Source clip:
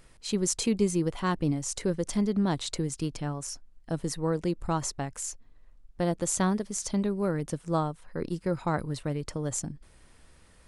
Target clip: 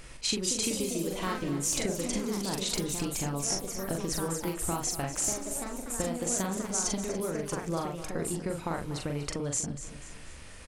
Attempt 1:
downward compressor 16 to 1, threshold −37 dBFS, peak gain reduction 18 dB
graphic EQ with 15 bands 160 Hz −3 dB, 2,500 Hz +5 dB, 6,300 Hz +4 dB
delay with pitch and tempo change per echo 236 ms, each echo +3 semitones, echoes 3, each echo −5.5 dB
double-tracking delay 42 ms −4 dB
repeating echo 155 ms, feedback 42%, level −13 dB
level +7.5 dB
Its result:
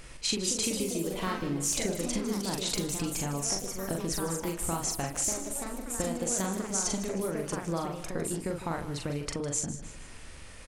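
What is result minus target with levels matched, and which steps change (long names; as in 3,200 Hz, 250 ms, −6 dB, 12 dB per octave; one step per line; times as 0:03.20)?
echo 89 ms early
change: repeating echo 244 ms, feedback 42%, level −13 dB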